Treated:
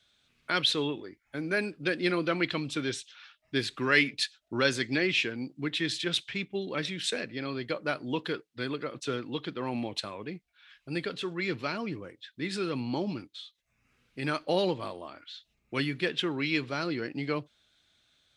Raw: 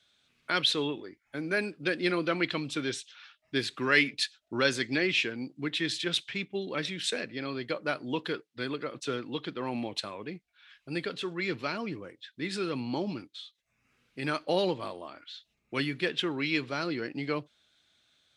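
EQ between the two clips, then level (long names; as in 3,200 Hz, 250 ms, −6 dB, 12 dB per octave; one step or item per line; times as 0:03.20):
low-shelf EQ 73 Hz +10.5 dB
0.0 dB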